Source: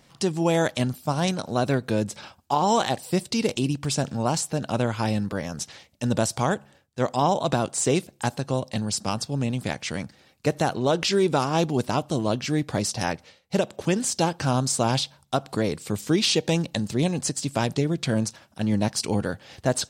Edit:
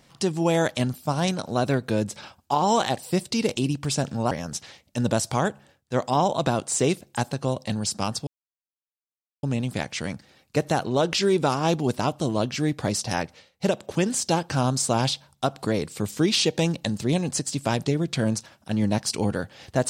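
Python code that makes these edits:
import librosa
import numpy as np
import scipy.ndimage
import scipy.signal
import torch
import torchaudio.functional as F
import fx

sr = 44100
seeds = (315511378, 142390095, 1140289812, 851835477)

y = fx.edit(x, sr, fx.cut(start_s=4.31, length_s=1.06),
    fx.insert_silence(at_s=9.33, length_s=1.16), tone=tone)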